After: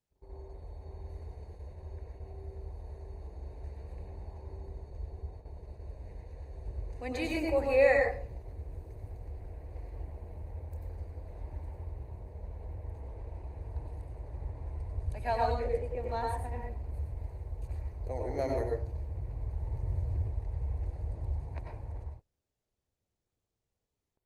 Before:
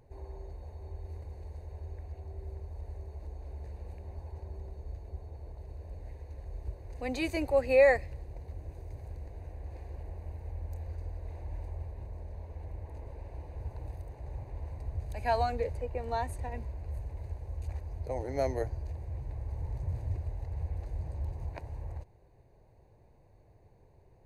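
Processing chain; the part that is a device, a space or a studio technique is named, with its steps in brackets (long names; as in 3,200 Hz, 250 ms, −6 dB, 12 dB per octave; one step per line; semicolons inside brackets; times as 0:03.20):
speakerphone in a meeting room (convolution reverb RT60 0.45 s, pre-delay 89 ms, DRR 0 dB; automatic gain control gain up to 3 dB; noise gate −40 dBFS, range −27 dB; level −6 dB; Opus 32 kbit/s 48,000 Hz)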